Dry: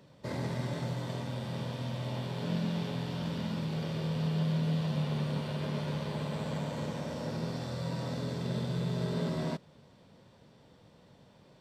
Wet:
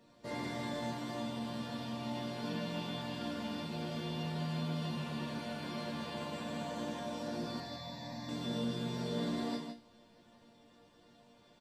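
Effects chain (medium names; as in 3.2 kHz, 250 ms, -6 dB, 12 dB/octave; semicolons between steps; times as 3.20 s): chord resonator A#3 major, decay 0.28 s; 7.60–8.29 s: static phaser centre 2 kHz, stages 8; loudspeakers at several distances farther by 30 m -10 dB, 54 m -7 dB; trim +14.5 dB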